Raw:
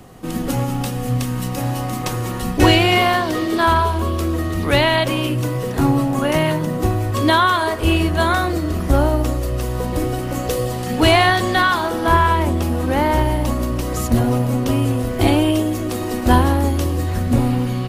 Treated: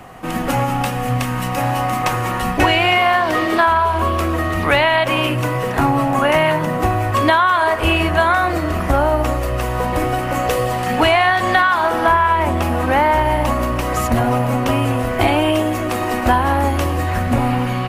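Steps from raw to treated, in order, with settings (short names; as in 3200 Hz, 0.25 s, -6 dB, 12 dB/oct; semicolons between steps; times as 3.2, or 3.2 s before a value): band shelf 1300 Hz +9.5 dB 2.5 oct; compressor 6:1, threshold -11 dBFS, peak gain reduction 9.5 dB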